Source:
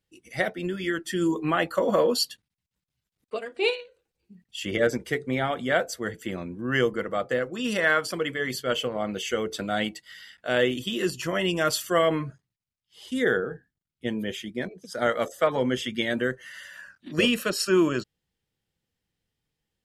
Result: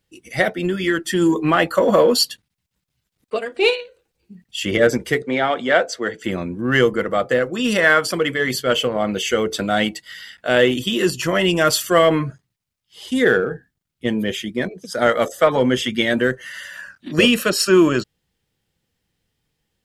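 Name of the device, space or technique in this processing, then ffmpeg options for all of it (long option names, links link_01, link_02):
parallel distortion: -filter_complex "[0:a]asplit=2[link_01][link_02];[link_02]asoftclip=type=hard:threshold=-26dB,volume=-12.5dB[link_03];[link_01][link_03]amix=inputs=2:normalize=0,asettb=1/sr,asplit=3[link_04][link_05][link_06];[link_04]atrim=end=5.224[link_07];[link_05]atrim=start=5.22:end=6.24,asetpts=PTS-STARTPTS,afade=type=in:duration=0.004:curve=qsin,afade=type=out:start_time=1.016:duration=0.004:curve=qsin,acrossover=split=230 7200:gain=0.2 1 0.0794[link_08][link_09][link_10];[link_08][link_09][link_10]amix=inputs=3:normalize=0[link_11];[link_06]atrim=start=6.236[link_12];[link_07][link_11]acrossfade=duration=0.004:curve1=hsin:curve2=qsin[link_13];[link_13][link_12]acrossfade=duration=0.004:curve1=qsin:curve2=hsin,volume=7dB"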